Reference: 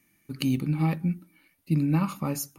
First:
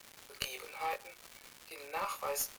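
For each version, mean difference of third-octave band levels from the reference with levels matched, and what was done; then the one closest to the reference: 16.0 dB: steep high-pass 430 Hz 72 dB/octave; doubling 21 ms -4.5 dB; one-sided clip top -30.5 dBFS; crackle 440 per s -37 dBFS; trim -2 dB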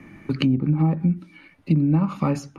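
5.5 dB: low-pass that closes with the level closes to 820 Hz, closed at -21.5 dBFS; treble shelf 6.8 kHz +10.5 dB; level-controlled noise filter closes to 1.3 kHz, open at -24.5 dBFS; three bands compressed up and down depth 70%; trim +5.5 dB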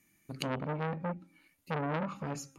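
8.5 dB: peaking EQ 7 kHz +7 dB 0.28 oct; low-pass that closes with the level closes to 1.4 kHz, closed at -20.5 dBFS; de-hum 270 Hz, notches 11; transformer saturation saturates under 1.7 kHz; trim -3 dB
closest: second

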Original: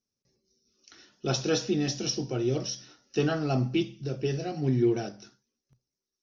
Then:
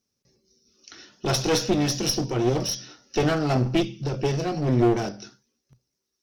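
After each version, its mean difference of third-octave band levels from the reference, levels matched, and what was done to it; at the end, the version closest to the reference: 4.5 dB: one-sided clip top -34.5 dBFS; trim +8 dB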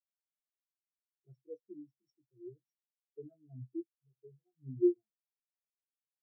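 20.0 dB: spectral contrast expander 4:1; trim -4.5 dB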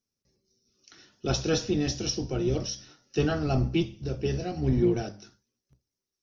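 1.5 dB: octave divider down 1 oct, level -4 dB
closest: third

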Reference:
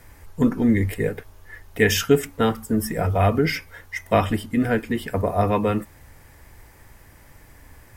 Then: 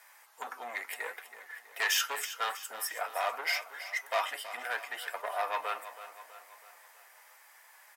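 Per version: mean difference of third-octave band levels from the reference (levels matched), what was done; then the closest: 15.0 dB: valve stage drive 17 dB, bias 0.35; feedback delay 325 ms, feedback 52%, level -13 dB; flange 0.76 Hz, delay 4.7 ms, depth 3.7 ms, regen +68%; high-pass 760 Hz 24 dB/octave; trim +2 dB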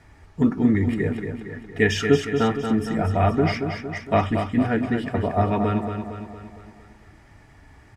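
7.5 dB: distance through air 94 m; comb of notches 520 Hz; on a send: feedback delay 230 ms, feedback 53%, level -7 dB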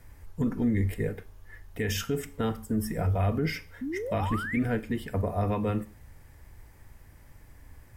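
2.5 dB: peak limiter -13 dBFS, peak gain reduction 8.5 dB; painted sound rise, 3.81–4.59 s, 240–2400 Hz -26 dBFS; bass shelf 200 Hz +8 dB; Schroeder reverb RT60 0.41 s, combs from 29 ms, DRR 16.5 dB; trim -9 dB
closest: third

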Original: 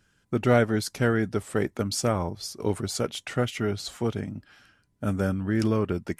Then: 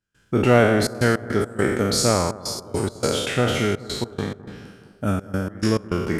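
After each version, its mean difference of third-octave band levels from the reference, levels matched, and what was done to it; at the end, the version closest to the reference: 9.5 dB: spectral sustain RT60 1.19 s; trance gate ".xxxxx.x.x" 104 bpm -24 dB; on a send: bucket-brigade echo 210 ms, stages 2048, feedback 64%, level -18 dB; on the sum: trim +3.5 dB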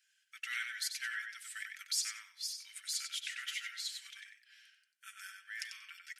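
22.5 dB: steep high-pass 1.7 kHz 48 dB/octave; comb 5.2 ms, depth 41%; tape echo 94 ms, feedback 23%, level -4 dB, low-pass 5.8 kHz; trim -4.5 dB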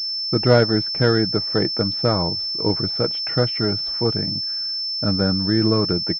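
7.0 dB: distance through air 320 m; comb 6.3 ms, depth 35%; class-D stage that switches slowly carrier 5.3 kHz; trim +6 dB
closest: third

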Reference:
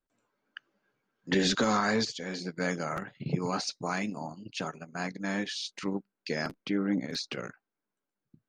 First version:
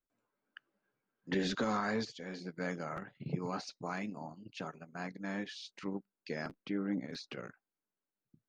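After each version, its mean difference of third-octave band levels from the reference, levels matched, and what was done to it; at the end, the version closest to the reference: 1.5 dB: treble shelf 4.8 kHz -11.5 dB; trim -6.5 dB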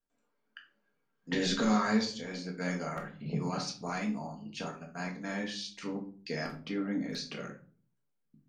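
4.5 dB: simulated room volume 310 m³, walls furnished, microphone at 1.7 m; trim -6.5 dB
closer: first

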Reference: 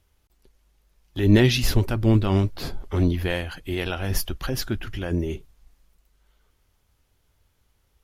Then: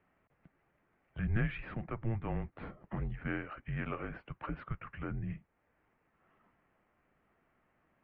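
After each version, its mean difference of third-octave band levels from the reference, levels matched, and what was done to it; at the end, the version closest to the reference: 9.0 dB: band-stop 1.2 kHz, Q 30; compression 1.5:1, threshold -54 dBFS, peak gain reduction 15 dB; mistuned SSB -220 Hz 250–2400 Hz; trim +3 dB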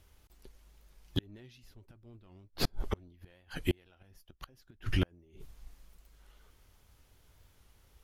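14.0 dB: in parallel at -6 dB: saturation -21.5 dBFS, distortion -7 dB; on the sum: inverted gate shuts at -17 dBFS, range -38 dB; warped record 45 rpm, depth 100 cents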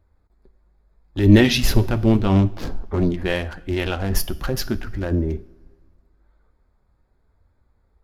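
3.0 dB: local Wiener filter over 15 samples; flange 0.79 Hz, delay 3.2 ms, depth 2.6 ms, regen -57%; two-slope reverb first 0.48 s, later 2 s, from -18 dB, DRR 13.5 dB; trim +8 dB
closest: third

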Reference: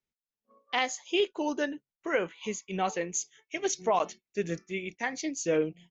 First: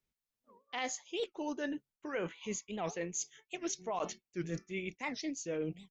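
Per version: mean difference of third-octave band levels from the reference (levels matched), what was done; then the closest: 3.5 dB: bass shelf 130 Hz +7.5 dB; reverse; compression 4:1, threshold -37 dBFS, peak gain reduction 13.5 dB; reverse; warped record 78 rpm, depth 250 cents; trim +1 dB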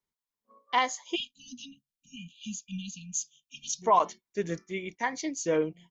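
6.0 dB: spectral selection erased 1.15–3.82 s, 260–2400 Hz; peaking EQ 1 kHz +11 dB 0.25 oct; band-stop 2.6 kHz, Q 8.1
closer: first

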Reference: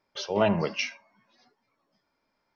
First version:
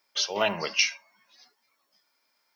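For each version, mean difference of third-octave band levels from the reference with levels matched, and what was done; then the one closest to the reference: 5.5 dB: tilt EQ +4.5 dB/octave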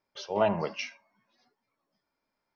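2.0 dB: dynamic bell 820 Hz, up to +7 dB, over -38 dBFS, Q 0.98; trim -6.5 dB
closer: second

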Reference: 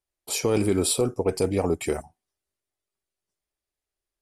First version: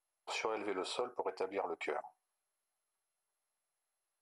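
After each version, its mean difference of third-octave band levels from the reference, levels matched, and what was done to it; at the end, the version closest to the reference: 9.0 dB: ladder band-pass 1.1 kHz, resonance 25%; compression 8:1, threshold -47 dBFS, peak gain reduction 11 dB; trim +13 dB; MP2 96 kbps 44.1 kHz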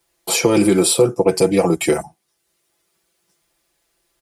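2.5 dB: high-pass 100 Hz 6 dB/octave; comb 5.9 ms, depth 92%; three bands compressed up and down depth 40%; trim +7 dB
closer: second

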